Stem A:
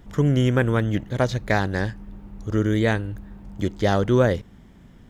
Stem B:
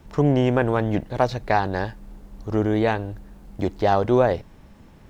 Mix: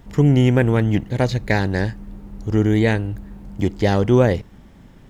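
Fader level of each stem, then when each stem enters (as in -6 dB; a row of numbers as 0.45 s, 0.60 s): +1.5 dB, -2.5 dB; 0.00 s, 0.00 s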